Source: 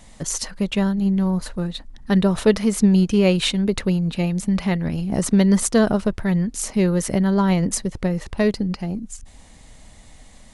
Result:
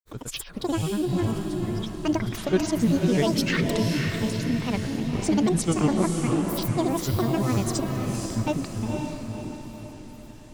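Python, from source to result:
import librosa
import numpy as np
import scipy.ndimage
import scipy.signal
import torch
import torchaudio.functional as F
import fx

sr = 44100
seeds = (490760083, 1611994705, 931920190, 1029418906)

y = fx.granulator(x, sr, seeds[0], grain_ms=100.0, per_s=20.0, spray_ms=100.0, spread_st=12)
y = fx.echo_diffused(y, sr, ms=520, feedback_pct=48, wet_db=-3.5)
y = y * 10.0 ** (-5.5 / 20.0)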